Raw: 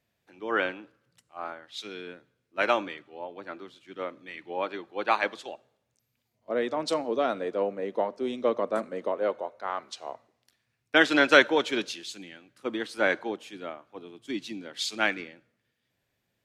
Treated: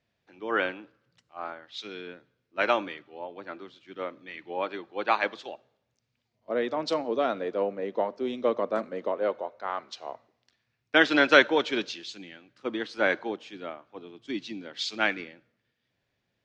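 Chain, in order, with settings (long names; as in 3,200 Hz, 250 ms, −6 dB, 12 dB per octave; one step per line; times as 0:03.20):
low-pass filter 5,900 Hz 24 dB per octave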